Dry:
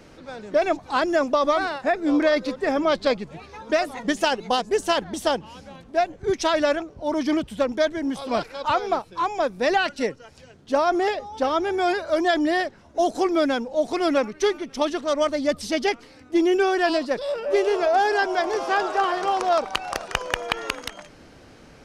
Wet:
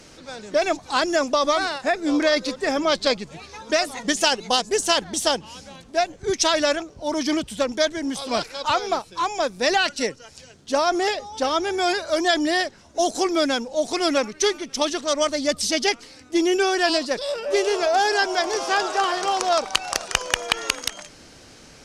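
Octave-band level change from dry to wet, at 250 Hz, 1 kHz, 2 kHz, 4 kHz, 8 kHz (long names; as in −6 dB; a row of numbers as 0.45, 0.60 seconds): −1.0, 0.0, +2.0, +7.0, +11.5 decibels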